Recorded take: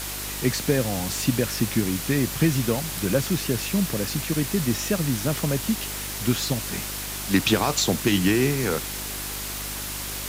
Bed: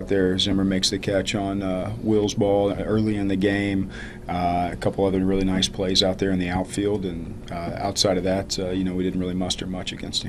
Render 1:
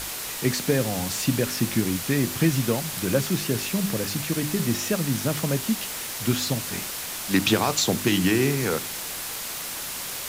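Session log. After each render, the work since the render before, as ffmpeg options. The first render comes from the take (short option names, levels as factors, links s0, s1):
-af "bandreject=f=50:t=h:w=4,bandreject=f=100:t=h:w=4,bandreject=f=150:t=h:w=4,bandreject=f=200:t=h:w=4,bandreject=f=250:t=h:w=4,bandreject=f=300:t=h:w=4,bandreject=f=350:t=h:w=4,bandreject=f=400:t=h:w=4"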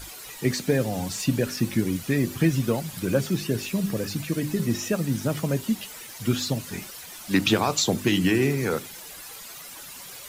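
-af "afftdn=nr=12:nf=-33"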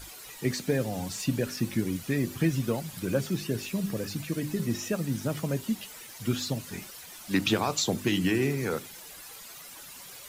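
-af "volume=0.596"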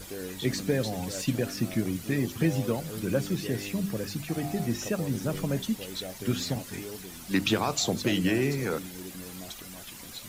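-filter_complex "[1:a]volume=0.126[s0];[0:a][s0]amix=inputs=2:normalize=0"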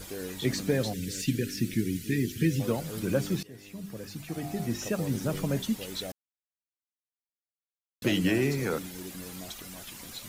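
-filter_complex "[0:a]asplit=3[s0][s1][s2];[s0]afade=t=out:st=0.92:d=0.02[s3];[s1]asuperstop=centerf=850:order=8:qfactor=0.71,afade=t=in:st=0.92:d=0.02,afade=t=out:st=2.59:d=0.02[s4];[s2]afade=t=in:st=2.59:d=0.02[s5];[s3][s4][s5]amix=inputs=3:normalize=0,asplit=4[s6][s7][s8][s9];[s6]atrim=end=3.43,asetpts=PTS-STARTPTS,afade=t=out:st=3.426:d=0.004:c=hsin:silence=0.0891251[s10];[s7]atrim=start=3.43:end=6.12,asetpts=PTS-STARTPTS,afade=t=in:d=1.62:silence=0.0891251,afade=t=out:st=2.686:d=0.004:c=hsin[s11];[s8]atrim=start=6.12:end=8.02,asetpts=PTS-STARTPTS,volume=0[s12];[s9]atrim=start=8.02,asetpts=PTS-STARTPTS,afade=t=in:d=0.004:c=hsin[s13];[s10][s11][s12][s13]concat=n=4:v=0:a=1"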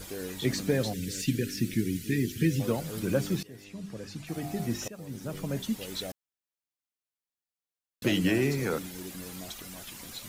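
-filter_complex "[0:a]asettb=1/sr,asplit=3[s0][s1][s2];[s0]atrim=end=3.644[s3];[s1]atrim=start=3.64:end=4.27,asetpts=PTS-STARTPTS,afade=t=in:d=0.004:c=qsin,afade=t=out:st=0.626:d=0.004:c=qsin,lowpass=8300[s4];[s2]atrim=start=4.266[s5];[s3][s4]acrossfade=d=0.004:c1=hsin:c2=qsin[s6];[s6][s5]acrossfade=d=0.004:c1=qsin:c2=hsin,asplit=2[s7][s8];[s7]atrim=end=4.88,asetpts=PTS-STARTPTS,afade=t=out:st=4.876:d=0.004:c=hsin:silence=0.133352[s9];[s8]atrim=start=4.88,asetpts=PTS-STARTPTS,afade=t=in:d=1.05:silence=0.133352[s10];[s9][s10]concat=n=2:v=0:a=1"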